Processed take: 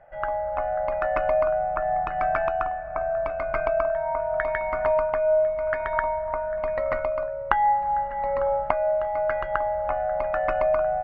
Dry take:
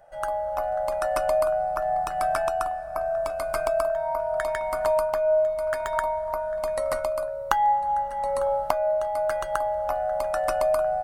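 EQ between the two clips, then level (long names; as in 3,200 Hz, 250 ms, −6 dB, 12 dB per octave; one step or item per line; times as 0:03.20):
transistor ladder low-pass 2,500 Hz, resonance 50%
low-shelf EQ 410 Hz +6.5 dB
+7.5 dB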